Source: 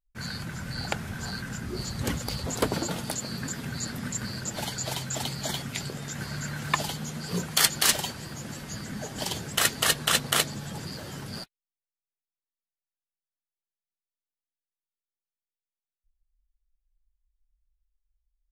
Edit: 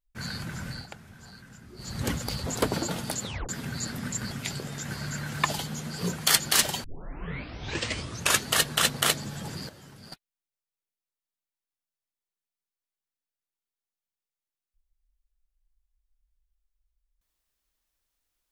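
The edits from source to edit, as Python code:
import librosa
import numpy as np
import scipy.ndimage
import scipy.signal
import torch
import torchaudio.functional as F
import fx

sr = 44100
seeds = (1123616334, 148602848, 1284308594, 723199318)

y = fx.edit(x, sr, fx.fade_down_up(start_s=0.67, length_s=1.3, db=-14.0, fade_s=0.2),
    fx.tape_stop(start_s=3.22, length_s=0.27),
    fx.cut(start_s=4.31, length_s=1.3),
    fx.tape_start(start_s=8.14, length_s=1.66),
    fx.clip_gain(start_s=10.99, length_s=0.43, db=-11.0), tone=tone)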